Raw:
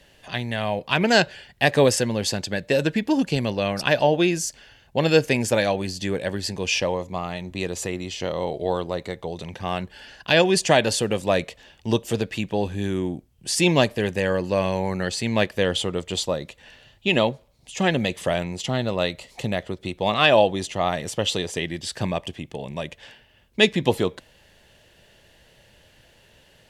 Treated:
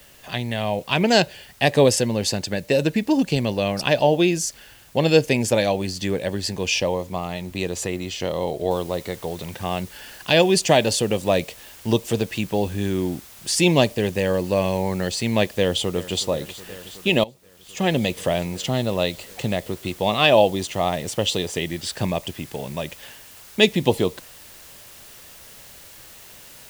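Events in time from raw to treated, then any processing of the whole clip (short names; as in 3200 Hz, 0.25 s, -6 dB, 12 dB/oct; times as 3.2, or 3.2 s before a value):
2.06–3.22 notch 3300 Hz
8.71 noise floor step -54 dB -47 dB
15.54–16.23 echo throw 0.37 s, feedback 85%, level -17.5 dB
17.24–17.92 fade in quadratic, from -19.5 dB
whole clip: dynamic EQ 1500 Hz, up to -7 dB, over -39 dBFS, Q 1.7; gain +2 dB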